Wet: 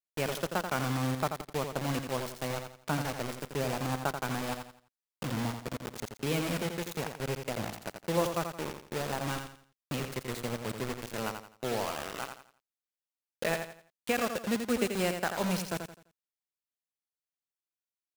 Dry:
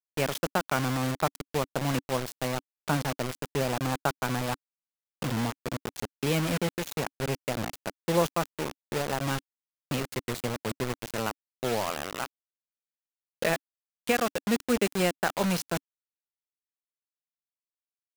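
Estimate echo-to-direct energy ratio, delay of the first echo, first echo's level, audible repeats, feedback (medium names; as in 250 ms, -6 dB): -6.5 dB, 85 ms, -7.0 dB, 3, 33%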